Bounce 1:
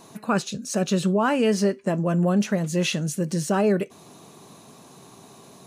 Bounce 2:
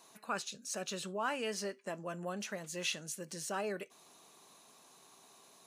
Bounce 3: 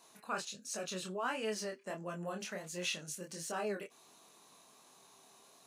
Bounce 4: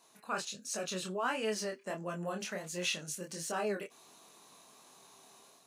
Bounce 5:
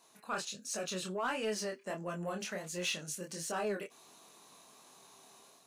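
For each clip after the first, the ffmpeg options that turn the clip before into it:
-af "highpass=f=1.1k:p=1,volume=-8.5dB"
-af "flanger=delay=22.5:depth=5.4:speed=1.4,volume=2dB"
-af "dynaudnorm=f=110:g=5:m=5.5dB,volume=-2.5dB"
-af "asoftclip=type=tanh:threshold=-25.5dB"

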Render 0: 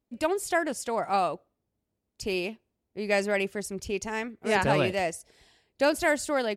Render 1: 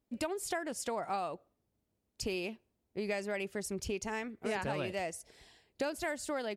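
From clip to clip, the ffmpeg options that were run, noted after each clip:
-af "acompressor=threshold=-33dB:ratio=6"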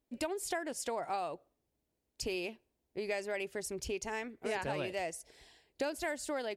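-af "equalizer=f=100:t=o:w=0.33:g=-11,equalizer=f=200:t=o:w=0.33:g=-9,equalizer=f=1.25k:t=o:w=0.33:g=-4"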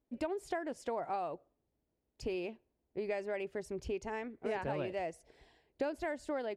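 -af "lowpass=f=1.2k:p=1,volume=1dB"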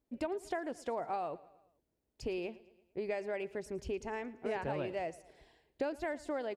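-af "aecho=1:1:112|224|336|448:0.1|0.052|0.027|0.0141"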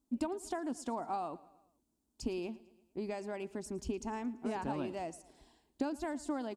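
-af "equalizer=f=125:t=o:w=1:g=-7,equalizer=f=250:t=o:w=1:g=10,equalizer=f=500:t=o:w=1:g=-11,equalizer=f=1k:t=o:w=1:g=5,equalizer=f=2k:t=o:w=1:g=-10,equalizer=f=8k:t=o:w=1:g=7,volume=1.5dB"

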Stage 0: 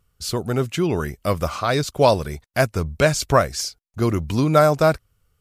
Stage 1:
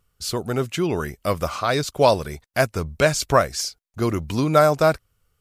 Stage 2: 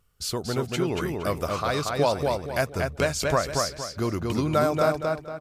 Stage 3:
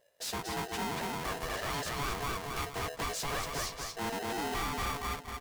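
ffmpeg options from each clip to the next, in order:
-af "equalizer=f=73:w=0.31:g=-4"
-filter_complex "[0:a]acompressor=threshold=-32dB:ratio=1.5,asplit=2[a][b];[b]adelay=233,lowpass=f=4.6k:p=1,volume=-3dB,asplit=2[c][d];[d]adelay=233,lowpass=f=4.6k:p=1,volume=0.35,asplit=2[e][f];[f]adelay=233,lowpass=f=4.6k:p=1,volume=0.35,asplit=2[g][h];[h]adelay=233,lowpass=f=4.6k:p=1,volume=0.35,asplit=2[i][j];[j]adelay=233,lowpass=f=4.6k:p=1,volume=0.35[k];[a][c][e][g][i][k]amix=inputs=6:normalize=0"
-af "flanger=delay=2.3:depth=9.2:regen=-68:speed=1.7:shape=sinusoidal,asoftclip=type=tanh:threshold=-31.5dB,aeval=exprs='val(0)*sgn(sin(2*PI*570*n/s))':c=same"

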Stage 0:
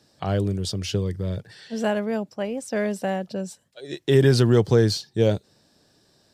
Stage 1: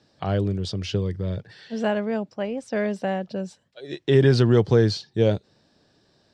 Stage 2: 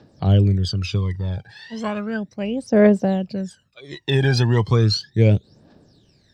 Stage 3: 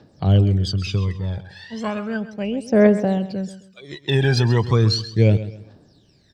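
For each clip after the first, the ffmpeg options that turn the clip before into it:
-af "lowpass=4.6k"
-af "aphaser=in_gain=1:out_gain=1:delay=1.3:decay=0.79:speed=0.35:type=triangular"
-af "aecho=1:1:132|264|396:0.2|0.0638|0.0204"

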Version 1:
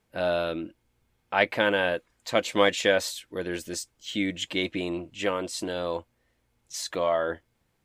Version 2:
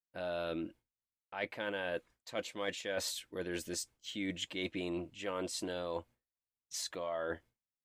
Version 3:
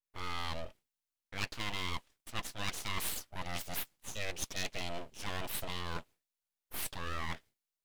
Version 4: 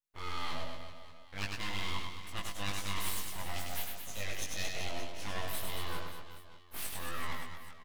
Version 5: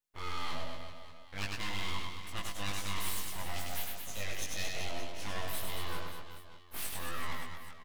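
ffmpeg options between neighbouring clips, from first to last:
-af "agate=range=-33dB:threshold=-46dB:ratio=3:detection=peak,areverse,acompressor=threshold=-30dB:ratio=12,areverse,volume=-4dB"
-af "aeval=exprs='abs(val(0))':c=same,adynamicequalizer=threshold=0.00178:dfrequency=2100:dqfactor=0.7:tfrequency=2100:tqfactor=0.7:attack=5:release=100:ratio=0.375:range=3:mode=boostabove:tftype=highshelf,volume=1dB"
-filter_complex "[0:a]asplit=2[a][b];[b]adelay=20,volume=-3.5dB[c];[a][c]amix=inputs=2:normalize=0,asplit=2[d][e];[e]aecho=0:1:100|225|381.2|576.6|820.7:0.631|0.398|0.251|0.158|0.1[f];[d][f]amix=inputs=2:normalize=0,volume=-3.5dB"
-af "asoftclip=type=tanh:threshold=-23dB,volume=1.5dB"

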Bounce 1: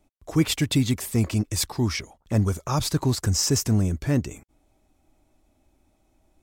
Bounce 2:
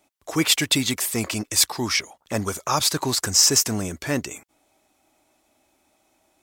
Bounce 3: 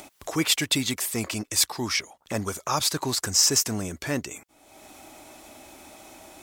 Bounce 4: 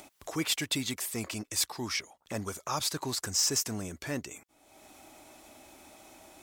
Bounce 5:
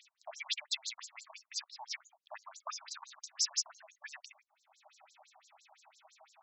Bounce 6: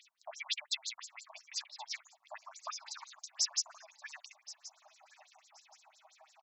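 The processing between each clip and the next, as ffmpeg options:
-af "highpass=f=870:p=1,volume=8.5dB"
-af "acompressor=mode=upward:threshold=-25dB:ratio=2.5,volume=-3.5dB"
-af "asoftclip=type=tanh:threshold=-10.5dB,volume=-6.5dB"
-af "afftfilt=real='re*between(b*sr/1024,800*pow(5700/800,0.5+0.5*sin(2*PI*5.9*pts/sr))/1.41,800*pow(5700/800,0.5+0.5*sin(2*PI*5.9*pts/sr))*1.41)':imag='im*between(b*sr/1024,800*pow(5700/800,0.5+0.5*sin(2*PI*5.9*pts/sr))/1.41,800*pow(5700/800,0.5+0.5*sin(2*PI*5.9*pts/sr))*1.41)':win_size=1024:overlap=0.75,volume=-1dB"
-af "aecho=1:1:1075|2150:0.141|0.0297"

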